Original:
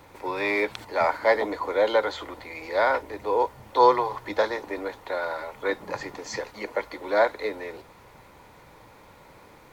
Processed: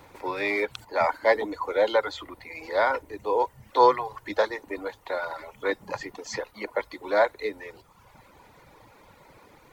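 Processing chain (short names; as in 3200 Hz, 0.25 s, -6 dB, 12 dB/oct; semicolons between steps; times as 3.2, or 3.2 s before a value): reverb removal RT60 1 s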